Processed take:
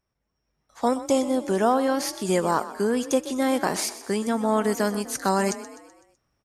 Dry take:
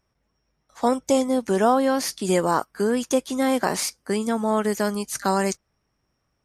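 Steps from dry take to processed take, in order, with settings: level rider gain up to 8 dB; on a send: frequency-shifting echo 126 ms, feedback 50%, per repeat +32 Hz, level -14.5 dB; on the sum: trim -7.5 dB

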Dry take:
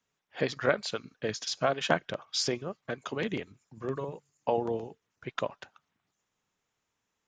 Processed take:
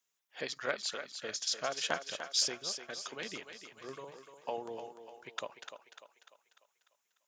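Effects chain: RIAA curve recording; thinning echo 297 ms, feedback 50%, high-pass 330 Hz, level -8 dB; Chebyshev shaper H 3 -25 dB, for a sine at -7.5 dBFS; trim -6.5 dB

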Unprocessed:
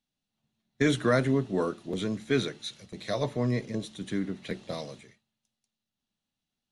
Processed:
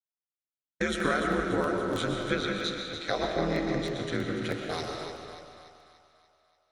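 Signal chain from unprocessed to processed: 2.06–4.27 s: low-pass 6 kHz 12 dB/octave; expander -42 dBFS; high-pass 340 Hz 6 dB/octave; peaking EQ 1.4 kHz +10 dB 0.23 oct; compression 6:1, threshold -29 dBFS, peak gain reduction 11 dB; ring modulator 81 Hz; two-band feedback delay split 660 Hz, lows 190 ms, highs 291 ms, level -9 dB; reverberation RT60 1.8 s, pre-delay 85 ms, DRR 2.5 dB; crackling interface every 0.32 s, samples 64, repeat, from 0.68 s; trim +7 dB

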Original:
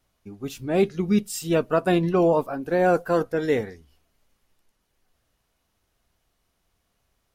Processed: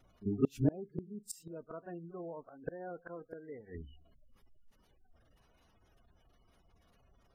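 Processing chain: spectral gate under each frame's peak -20 dB strong; pre-echo 41 ms -16 dB; inverted gate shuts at -23 dBFS, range -31 dB; trim +6 dB

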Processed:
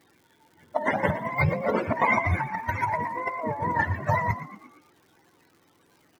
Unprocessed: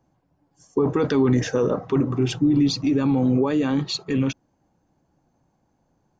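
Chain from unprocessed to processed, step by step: spectrum inverted on a logarithmic axis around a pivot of 510 Hz; compressor with a negative ratio -28 dBFS, ratio -0.5; crackle 210 per s -52 dBFS; on a send: frequency-shifting echo 117 ms, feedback 49%, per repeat +49 Hz, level -13 dB; on the sum: trim +3 dB

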